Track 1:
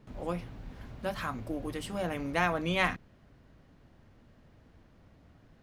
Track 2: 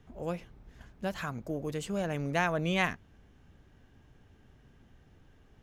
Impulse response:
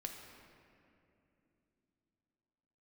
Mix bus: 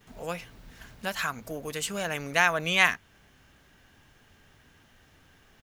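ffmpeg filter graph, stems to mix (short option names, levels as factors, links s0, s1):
-filter_complex "[0:a]volume=0.447[s0];[1:a]equalizer=f=1500:w=0.4:g=10.5,volume=-1,adelay=7.5,volume=0.531,asplit=2[s1][s2];[s2]apad=whole_len=247865[s3];[s0][s3]sidechaincompress=threshold=0.00891:ratio=8:attack=37:release=213[s4];[s4][s1]amix=inputs=2:normalize=0,crystalizer=i=5:c=0"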